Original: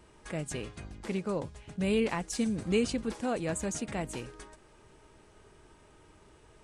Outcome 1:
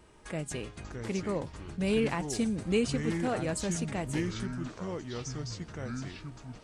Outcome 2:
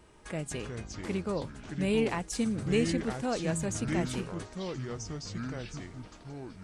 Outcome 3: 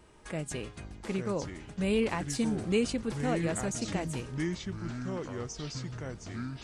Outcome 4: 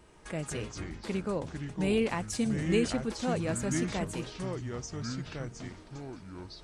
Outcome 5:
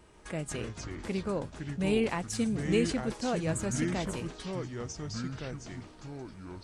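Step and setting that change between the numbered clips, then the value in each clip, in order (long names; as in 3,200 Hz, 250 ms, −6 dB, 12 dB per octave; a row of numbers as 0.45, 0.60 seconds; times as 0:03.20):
delay with pitch and tempo change per echo, delay time: 503, 252, 745, 83, 144 milliseconds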